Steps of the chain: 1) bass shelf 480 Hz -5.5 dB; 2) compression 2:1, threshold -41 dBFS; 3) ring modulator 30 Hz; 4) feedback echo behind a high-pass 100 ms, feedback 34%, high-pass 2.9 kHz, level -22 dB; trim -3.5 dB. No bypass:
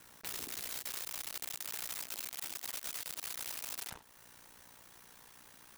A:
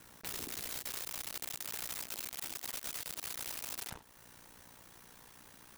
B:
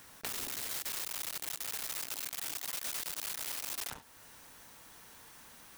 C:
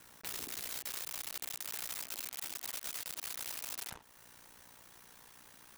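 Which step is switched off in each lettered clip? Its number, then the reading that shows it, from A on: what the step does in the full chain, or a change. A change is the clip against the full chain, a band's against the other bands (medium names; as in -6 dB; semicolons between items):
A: 1, 125 Hz band +4.5 dB; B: 3, crest factor change +1.5 dB; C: 4, echo-to-direct -30.0 dB to none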